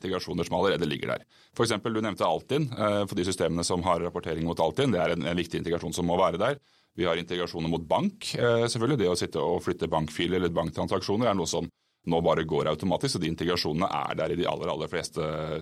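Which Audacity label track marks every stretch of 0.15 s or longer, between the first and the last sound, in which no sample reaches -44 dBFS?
1.220000	1.560000	silence
6.580000	6.980000	silence
11.690000	12.070000	silence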